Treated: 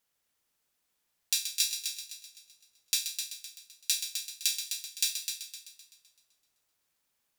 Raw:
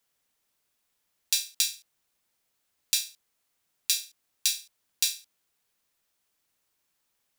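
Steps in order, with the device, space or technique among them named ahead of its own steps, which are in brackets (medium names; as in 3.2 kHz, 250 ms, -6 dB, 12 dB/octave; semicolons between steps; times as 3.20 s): multi-head tape echo (multi-head delay 128 ms, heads first and second, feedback 45%, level -9 dB; wow and flutter 12 cents); trim -3 dB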